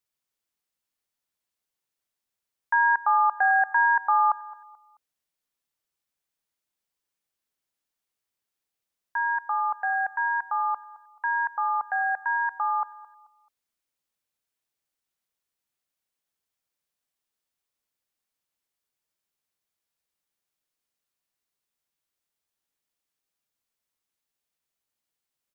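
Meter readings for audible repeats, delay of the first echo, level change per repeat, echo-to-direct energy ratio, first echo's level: 2, 0.217 s, -9.0 dB, -19.5 dB, -20.0 dB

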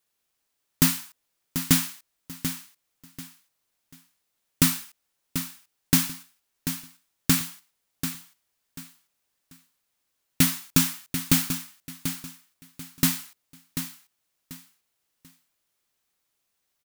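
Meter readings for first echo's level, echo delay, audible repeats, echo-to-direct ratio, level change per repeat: -9.5 dB, 0.739 s, 3, -9.0 dB, -11.5 dB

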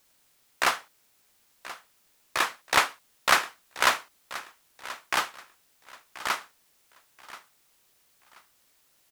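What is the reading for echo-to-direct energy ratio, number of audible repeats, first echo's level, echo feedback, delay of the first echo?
-16.0 dB, 2, -16.5 dB, 28%, 1.031 s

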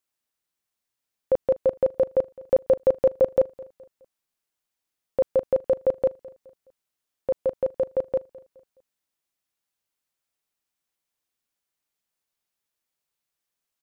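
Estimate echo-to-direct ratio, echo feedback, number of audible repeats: -20.5 dB, 39%, 2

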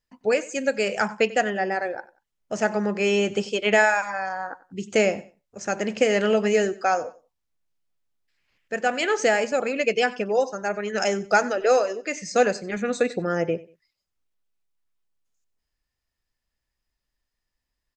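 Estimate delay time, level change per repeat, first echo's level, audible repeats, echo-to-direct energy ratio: 93 ms, -11.5 dB, -19.5 dB, 2, -19.0 dB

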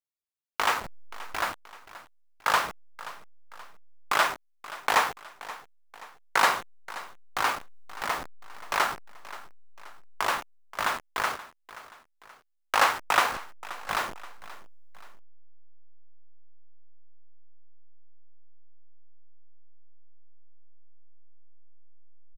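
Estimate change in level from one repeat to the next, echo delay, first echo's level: -6.5 dB, 0.528 s, -17.0 dB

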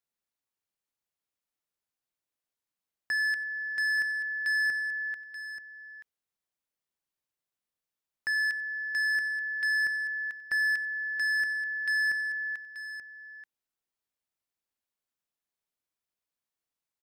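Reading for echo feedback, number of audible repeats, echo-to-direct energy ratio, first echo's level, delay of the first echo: no steady repeat, 2, -11.0 dB, -19.0 dB, 93 ms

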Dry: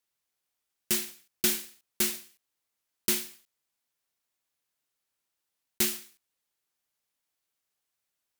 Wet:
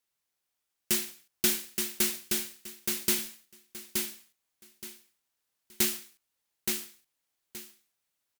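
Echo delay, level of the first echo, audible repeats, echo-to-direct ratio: 0.873 s, -4.0 dB, 3, -4.0 dB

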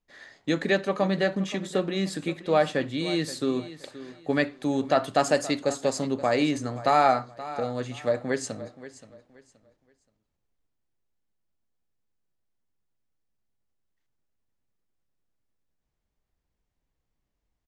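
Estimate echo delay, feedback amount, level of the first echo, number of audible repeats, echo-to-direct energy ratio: 0.525 s, 27%, -15.5 dB, 2, -15.0 dB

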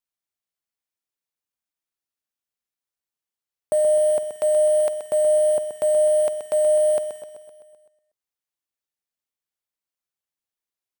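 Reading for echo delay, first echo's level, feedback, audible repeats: 0.128 s, -9.0 dB, 59%, 6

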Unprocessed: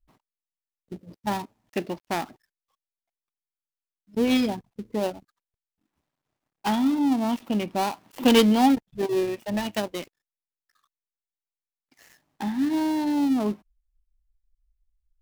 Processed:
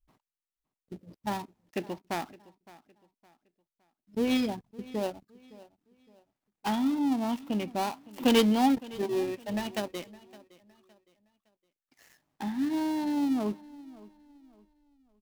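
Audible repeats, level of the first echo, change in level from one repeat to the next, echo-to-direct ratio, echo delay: 2, -20.5 dB, -9.5 dB, -20.0 dB, 0.563 s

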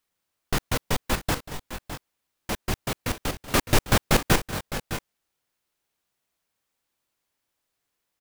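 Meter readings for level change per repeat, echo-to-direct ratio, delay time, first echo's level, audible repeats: no steady repeat, -9.5 dB, 0.188 s, -16.5 dB, 2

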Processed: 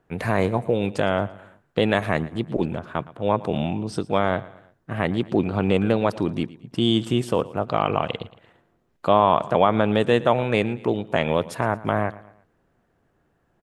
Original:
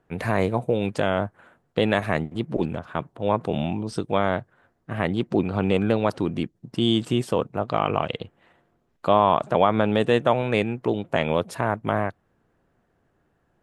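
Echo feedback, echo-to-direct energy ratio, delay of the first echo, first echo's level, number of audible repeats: 44%, -18.0 dB, 0.114 s, -19.0 dB, 3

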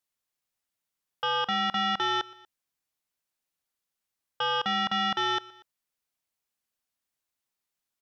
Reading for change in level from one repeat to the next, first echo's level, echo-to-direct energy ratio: -4.5 dB, -21.5 dB, -20.0 dB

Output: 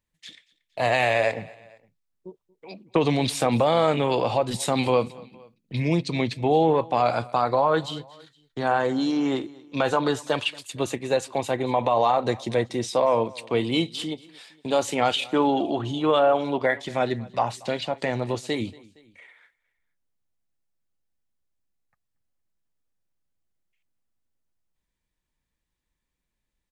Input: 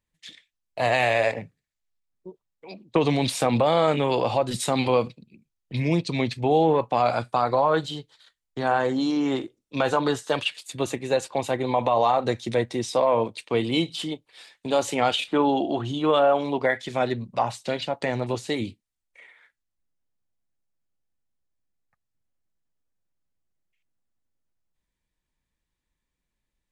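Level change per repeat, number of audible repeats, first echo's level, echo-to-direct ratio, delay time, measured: -5.5 dB, 2, -23.0 dB, -22.0 dB, 0.232 s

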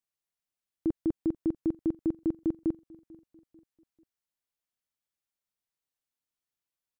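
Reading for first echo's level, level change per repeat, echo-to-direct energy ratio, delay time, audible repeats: -23.0 dB, -7.0 dB, -22.0 dB, 0.443 s, 2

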